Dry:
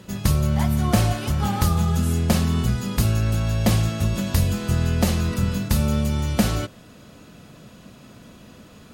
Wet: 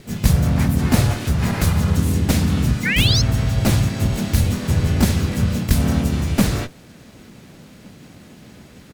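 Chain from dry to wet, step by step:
lower of the sound and its delayed copy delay 0.48 ms
sound drawn into the spectrogram rise, 0:02.85–0:03.22, 1,700–5,500 Hz −23 dBFS
pitch-shifted copies added −3 semitones −3 dB, +3 semitones −2 dB

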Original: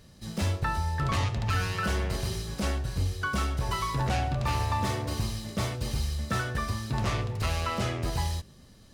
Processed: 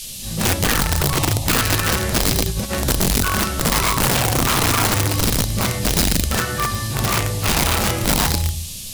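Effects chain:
rectangular room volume 61 cubic metres, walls mixed, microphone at 1.9 metres
0:02.44–0:02.85: compressor whose output falls as the input rises −22 dBFS, ratio −0.5
noise in a band 2,800–13,000 Hz −33 dBFS
0:01.03–0:01.46: phaser with its sweep stopped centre 300 Hz, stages 8
0:06.40–0:07.48: high-pass filter 140 Hz 6 dB per octave
wrap-around overflow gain 12 dB

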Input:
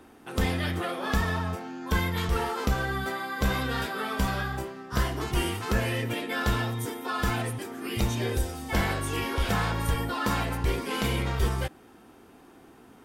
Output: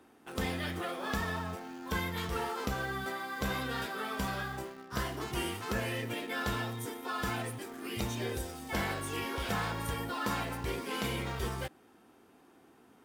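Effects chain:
high-pass filter 130 Hz 6 dB per octave
in parallel at −11.5 dB: bit-depth reduction 6 bits, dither none
on the sum: level −7.5 dB

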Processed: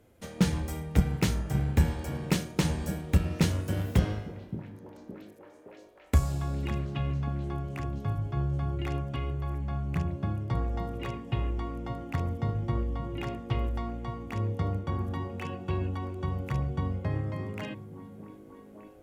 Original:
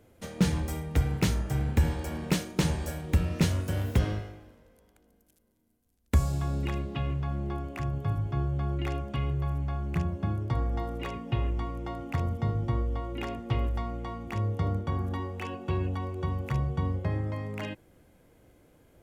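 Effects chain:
echo through a band-pass that steps 568 ms, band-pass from 170 Hz, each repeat 0.7 octaves, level −5.5 dB
harmonic generator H 3 −17 dB, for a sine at −10.5 dBFS
level +3 dB

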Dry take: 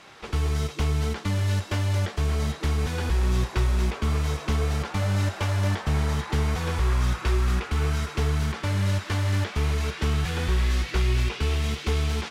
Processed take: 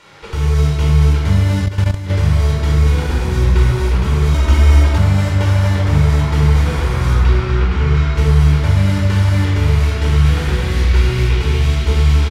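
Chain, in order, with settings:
0:07.20–0:08.15: low-pass filter 4,600 Hz 12 dB per octave
single-tap delay 251 ms −13.5 dB
rectangular room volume 2,400 cubic metres, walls mixed, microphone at 4.6 metres
0:01.66–0:02.10: output level in coarse steps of 12 dB
0:04.34–0:04.98: comb filter 3.2 ms, depth 93%

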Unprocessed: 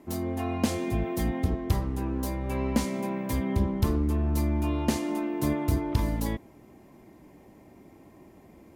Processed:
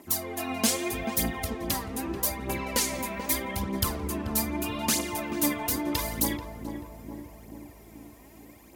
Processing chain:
spectral tilt +3.5 dB per octave
phase shifter 0.8 Hz, delay 4.7 ms, feedback 61%
feedback echo with a low-pass in the loop 435 ms, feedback 66%, low-pass 920 Hz, level −6 dB

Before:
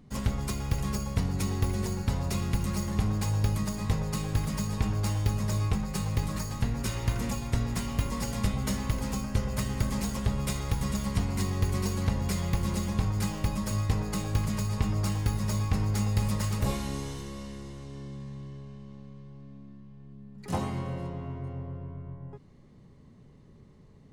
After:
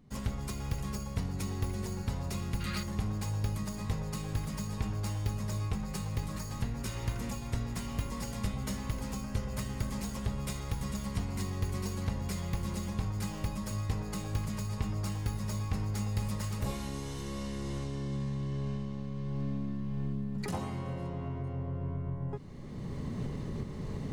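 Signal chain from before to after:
camcorder AGC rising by 18 dB per second
gain on a spectral selection 0:02.61–0:02.83, 1,200–4,900 Hz +11 dB
level −6 dB

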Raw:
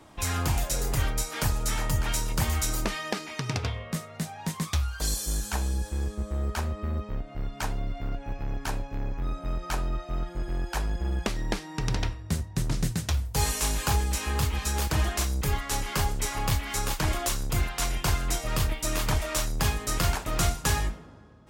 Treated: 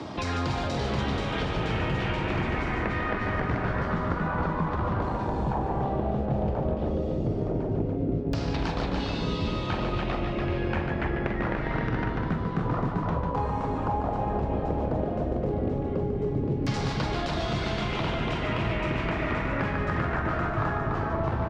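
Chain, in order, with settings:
high-pass filter 210 Hz 12 dB per octave
delay with pitch and tempo change per echo 517 ms, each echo −4 semitones, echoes 3
downward compressor, threshold −30 dBFS, peak gain reduction 8.5 dB
spectral tilt −3 dB per octave
loudspeakers that aren't time-aligned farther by 15 metres −9 dB, 50 metres −6 dB, 99 metres −4 dB
auto-filter low-pass saw down 0.12 Hz 370–5,000 Hz
multiband upward and downward compressor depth 70%

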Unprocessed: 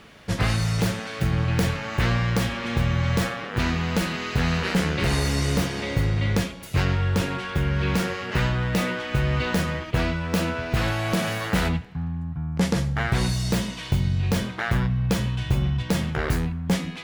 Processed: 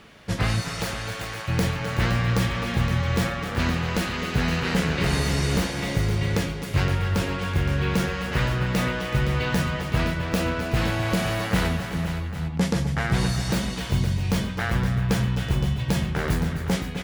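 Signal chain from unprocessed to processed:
0:00.60–0:01.47: high-pass filter 370 Hz → 810 Hz 12 dB per octave
multi-tap delay 255/262/376/516/796 ms −14.5/−12/−13.5/−10/−13.5 dB
level −1 dB

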